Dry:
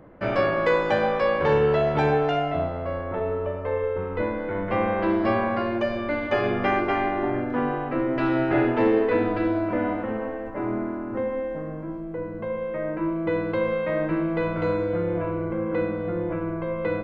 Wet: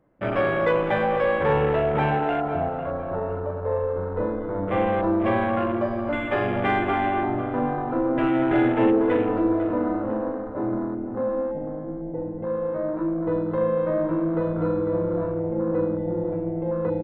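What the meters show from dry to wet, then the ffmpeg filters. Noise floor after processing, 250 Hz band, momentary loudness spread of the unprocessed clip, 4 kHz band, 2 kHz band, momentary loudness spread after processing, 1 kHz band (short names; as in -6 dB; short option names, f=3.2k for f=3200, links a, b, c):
-32 dBFS, +2.0 dB, 8 LU, -2.5 dB, -1.0 dB, 8 LU, +1.0 dB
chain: -filter_complex "[0:a]asplit=2[a][b];[b]aecho=0:1:42|236|243:0.398|0.266|0.126[c];[a][c]amix=inputs=2:normalize=0,afwtdn=0.0316,acontrast=81,asplit=2[d][e];[e]adelay=500,lowpass=f=3.5k:p=1,volume=-12dB,asplit=2[f][g];[g]adelay=500,lowpass=f=3.5k:p=1,volume=0.36,asplit=2[h][i];[i]adelay=500,lowpass=f=3.5k:p=1,volume=0.36,asplit=2[j][k];[k]adelay=500,lowpass=f=3.5k:p=1,volume=0.36[l];[f][h][j][l]amix=inputs=4:normalize=0[m];[d][m]amix=inputs=2:normalize=0,volume=-7dB"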